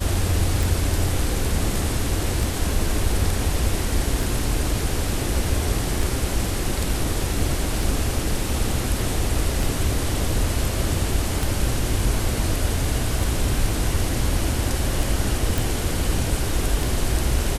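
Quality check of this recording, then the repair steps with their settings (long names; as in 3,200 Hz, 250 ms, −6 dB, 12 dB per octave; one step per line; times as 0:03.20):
scratch tick 33 1/3 rpm
0:15.58: click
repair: click removal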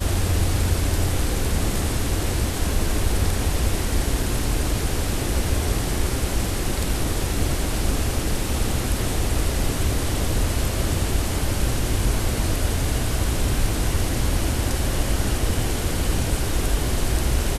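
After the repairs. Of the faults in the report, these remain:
none of them is left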